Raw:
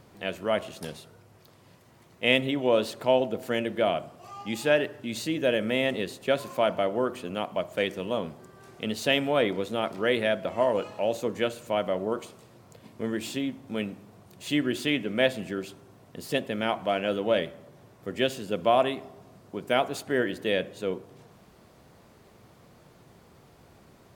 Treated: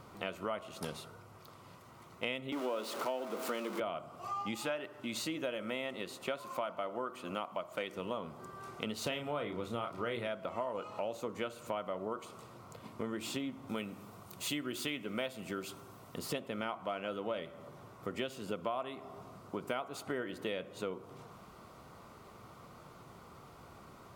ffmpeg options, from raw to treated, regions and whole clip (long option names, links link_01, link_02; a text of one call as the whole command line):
ffmpeg -i in.wav -filter_complex "[0:a]asettb=1/sr,asplit=3[link_01][link_02][link_03];[link_01]atrim=end=2.524[link_04];[link_02]atrim=start=2.52:end=3.8,asetpts=PTS-STARTPTS,afade=type=in:duration=0.004:curve=qsin,afade=type=out:start_time=1.276:duration=0.004:curve=qsin,aeval=exprs='val(0)+0.5*0.0335*sgn(val(0))':channel_layout=same,highpass=frequency=210:width=0.5412,highpass=frequency=210:width=1.3066[link_05];[link_03]atrim=start=3.796[link_06];[link_04][link_05]acrossfade=duration=0.004:curve1=hsin:curve2=qsin[link_07];[link_07][link_06]acrossfade=duration=0.004:curve1=qsin:curve2=hsin,asettb=1/sr,asplit=3[link_08][link_09][link_10];[link_08]atrim=end=4.554[link_11];[link_09]atrim=start=4.55:end=7.93,asetpts=PTS-STARTPTS,afade=type=in:duration=0.004:curve=qsin,afade=type=out:start_time=3.376:duration=0.004:curve=qsin,lowshelf=frequency=160:gain=-9,bandreject=frequency=440:width=9.8[link_12];[link_10]atrim=start=7.926[link_13];[link_11][link_12]acrossfade=duration=0.004:curve1=hsin:curve2=qsin[link_14];[link_14][link_13]acrossfade=duration=0.004:curve1=qsin:curve2=hsin,asettb=1/sr,asplit=3[link_15][link_16][link_17];[link_15]atrim=end=9.034[link_18];[link_16]atrim=start=9.03:end=10.28,asetpts=PTS-STARTPTS,afade=type=in:duration=0.004:curve=qsin,afade=type=out:start_time=1.246:duration=0.004:curve=qsin,equalizer=frequency=96:width_type=o:width=1.1:gain=8.5,asplit=2[link_19][link_20];[link_20]adelay=34,volume=-7dB[link_21];[link_19][link_21]amix=inputs=2:normalize=0,atrim=end_sample=55125[link_22];[link_17]atrim=start=10.276[link_23];[link_18][link_22]acrossfade=duration=0.004:curve1=hsin:curve2=qsin[link_24];[link_24][link_23]acrossfade=duration=0.004:curve1=qsin:curve2=hsin,asettb=1/sr,asplit=3[link_25][link_26][link_27];[link_25]atrim=end=13.694[link_28];[link_26]atrim=start=13.69:end=16.19,asetpts=PTS-STARTPTS,afade=type=in:duration=0.004:curve=qsin,afade=type=out:start_time=2.496:duration=0.004:curve=qsin,lowpass=frequency=4000:poles=1,aemphasis=mode=production:type=75fm[link_29];[link_27]atrim=start=16.186[link_30];[link_28][link_29]acrossfade=duration=0.004:curve1=hsin:curve2=qsin[link_31];[link_31][link_30]acrossfade=duration=0.004:curve1=qsin:curve2=hsin,equalizer=frequency=1200:width_type=o:width=0.79:gain=10,bandreject=frequency=1700:width=6.9,acompressor=threshold=-34dB:ratio=6,volume=-1dB" out.wav